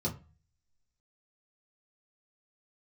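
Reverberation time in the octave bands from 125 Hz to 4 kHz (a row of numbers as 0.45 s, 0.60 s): 0.60 s, 0.40 s, 0.30 s, 0.35 s, 0.30 s, 0.25 s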